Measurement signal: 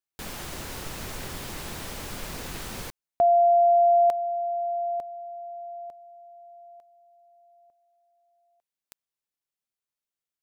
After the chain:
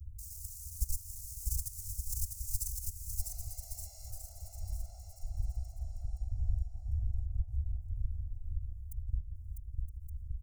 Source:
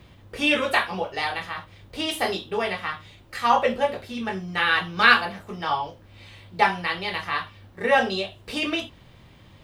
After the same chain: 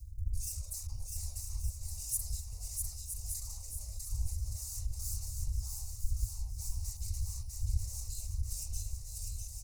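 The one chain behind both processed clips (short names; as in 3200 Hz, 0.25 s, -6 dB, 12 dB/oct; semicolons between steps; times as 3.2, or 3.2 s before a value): wind noise 83 Hz -35 dBFS; dynamic EQ 1700 Hz, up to +3 dB, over -38 dBFS, Q 3.3; tube stage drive 28 dB, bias 0.7; level quantiser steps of 19 dB; echo 0.968 s -10.5 dB; whisperiser; on a send: bouncing-ball echo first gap 0.65 s, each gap 0.8×, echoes 5; on the sum: compressor 1.5:1, threshold -49 dBFS; inverse Chebyshev band-stop 160–3500 Hz, stop band 40 dB; gain +16.5 dB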